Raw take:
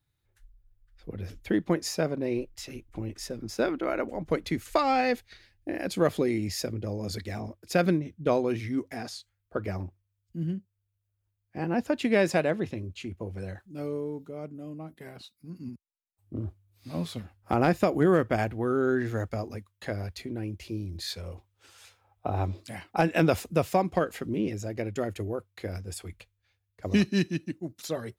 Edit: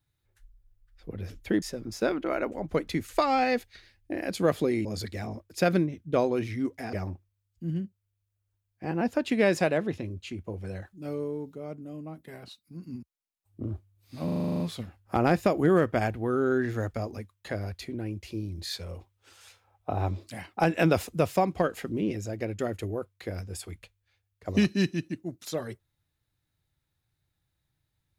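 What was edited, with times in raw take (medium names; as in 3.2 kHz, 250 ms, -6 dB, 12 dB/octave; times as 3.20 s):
1.62–3.19 s: delete
6.42–6.98 s: delete
9.06–9.66 s: delete
16.97 s: stutter 0.04 s, 10 plays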